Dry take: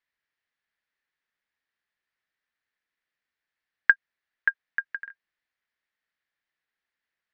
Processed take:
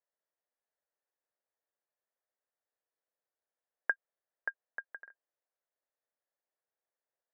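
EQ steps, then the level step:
four-pole ladder band-pass 670 Hz, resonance 45%
spectral tilt −3.5 dB per octave
+7.5 dB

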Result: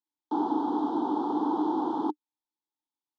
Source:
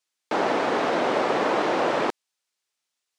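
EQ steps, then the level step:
formant filter u
elliptic band-stop filter 1,600–3,300 Hz, stop band 40 dB
+7.0 dB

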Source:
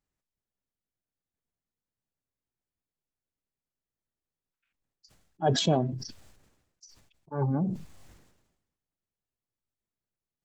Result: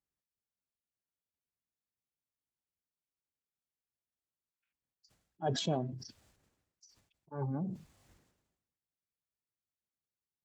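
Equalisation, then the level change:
high-pass filter 43 Hz
−8.5 dB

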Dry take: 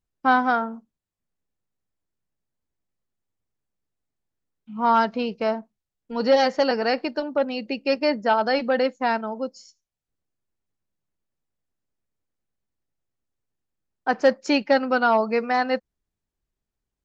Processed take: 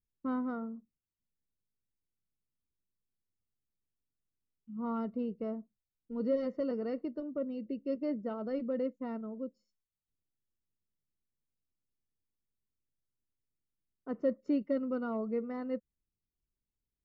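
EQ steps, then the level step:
moving average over 54 samples
−6.0 dB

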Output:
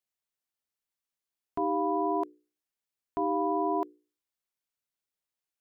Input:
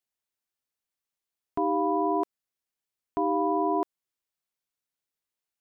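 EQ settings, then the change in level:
mains-hum notches 60/120/180/240/300/360/420/480 Hz
−2.5 dB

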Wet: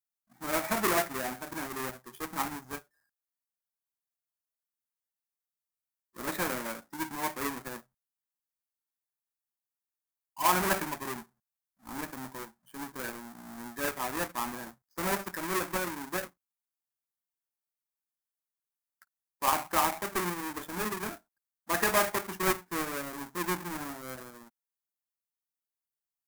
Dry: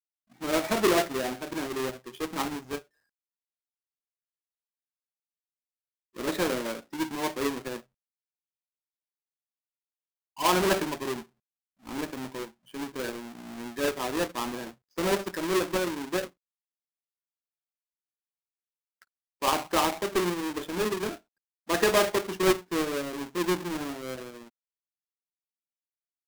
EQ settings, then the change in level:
dynamic equaliser 2,400 Hz, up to +6 dB, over −47 dBFS, Q 2.2
drawn EQ curve 210 Hz 0 dB, 440 Hz −7 dB, 830 Hz +3 dB, 1,700 Hz +2 dB, 2,700 Hz −7 dB, 13,000 Hz +8 dB
−3.5 dB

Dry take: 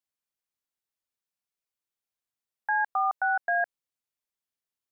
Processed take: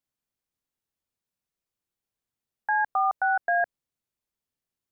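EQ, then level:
low-shelf EQ 440 Hz +11 dB
0.0 dB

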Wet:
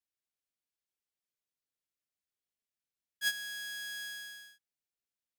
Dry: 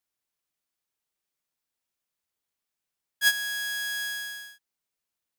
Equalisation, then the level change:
parametric band 1,000 Hz −8.5 dB 0.88 octaves
high-shelf EQ 9,400 Hz −4.5 dB
−8.0 dB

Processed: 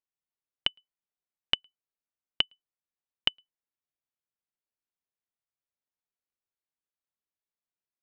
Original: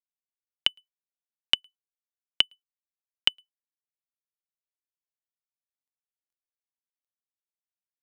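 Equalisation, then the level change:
head-to-tape spacing loss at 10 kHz 21 dB
+2.0 dB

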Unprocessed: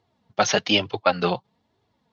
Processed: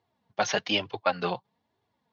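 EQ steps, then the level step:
high-pass filter 63 Hz
parametric band 1,300 Hz +5 dB 2.1 octaves
notch filter 1,300 Hz, Q 12
−8.5 dB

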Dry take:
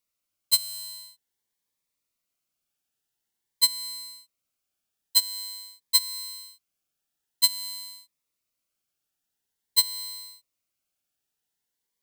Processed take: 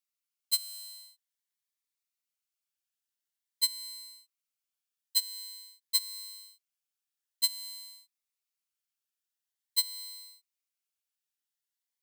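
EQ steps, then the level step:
high-pass filter 1,300 Hz 12 dB per octave
−7.0 dB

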